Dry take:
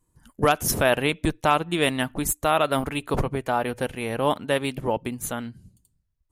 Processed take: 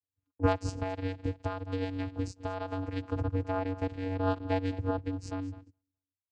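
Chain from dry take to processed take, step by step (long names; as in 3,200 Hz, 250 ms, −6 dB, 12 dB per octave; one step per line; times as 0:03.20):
repeating echo 208 ms, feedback 31%, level −16.5 dB
noise gate −43 dBFS, range −25 dB
high-shelf EQ 5,600 Hz +8 dB
0:00.68–0:03.24: downward compressor, threshold −23 dBFS, peak gain reduction 9 dB
channel vocoder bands 8, square 94.3 Hz
level −5 dB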